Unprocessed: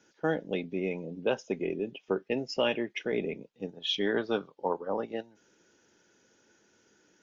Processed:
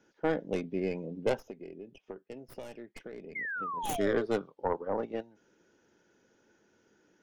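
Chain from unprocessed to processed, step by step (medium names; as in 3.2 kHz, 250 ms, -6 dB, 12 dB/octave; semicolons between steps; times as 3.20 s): tracing distortion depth 0.39 ms; treble shelf 2.5 kHz -10 dB; 1.37–3.74 s: compression 5:1, threshold -43 dBFS, peak gain reduction 17 dB; 3.35–4.26 s: painted sound fall 400–2200 Hz -36 dBFS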